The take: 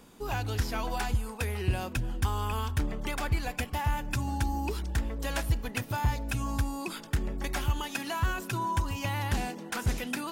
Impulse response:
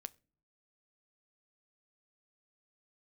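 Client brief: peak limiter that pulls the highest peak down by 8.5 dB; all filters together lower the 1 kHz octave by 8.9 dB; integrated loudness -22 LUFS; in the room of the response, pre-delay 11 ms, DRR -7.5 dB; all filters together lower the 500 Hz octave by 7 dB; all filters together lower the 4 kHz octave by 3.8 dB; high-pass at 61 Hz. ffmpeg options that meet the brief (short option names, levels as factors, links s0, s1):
-filter_complex "[0:a]highpass=61,equalizer=f=500:t=o:g=-7,equalizer=f=1000:t=o:g=-8.5,equalizer=f=4000:t=o:g=-4.5,alimiter=level_in=1.19:limit=0.0631:level=0:latency=1,volume=0.841,asplit=2[s0][s1];[1:a]atrim=start_sample=2205,adelay=11[s2];[s1][s2]afir=irnorm=-1:irlink=0,volume=3.98[s3];[s0][s3]amix=inputs=2:normalize=0,volume=2.24"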